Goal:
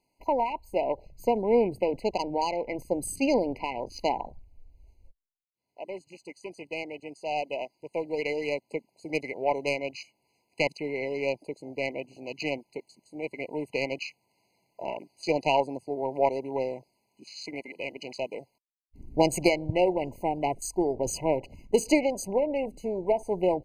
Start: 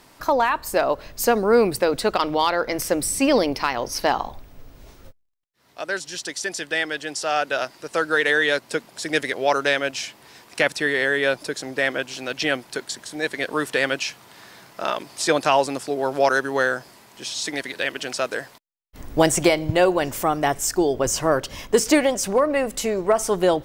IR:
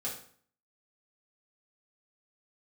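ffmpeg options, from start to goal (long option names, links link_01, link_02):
-af "afwtdn=0.0251,aeval=exprs='0.596*(cos(1*acos(clip(val(0)/0.596,-1,1)))-cos(1*PI/2))+0.0168*(cos(2*acos(clip(val(0)/0.596,-1,1)))-cos(2*PI/2))+0.0841*(cos(3*acos(clip(val(0)/0.596,-1,1)))-cos(3*PI/2))':channel_layout=same,afftfilt=real='re*eq(mod(floor(b*sr/1024/1000),2),0)':imag='im*eq(mod(floor(b*sr/1024/1000),2),0)':win_size=1024:overlap=0.75,volume=-2.5dB"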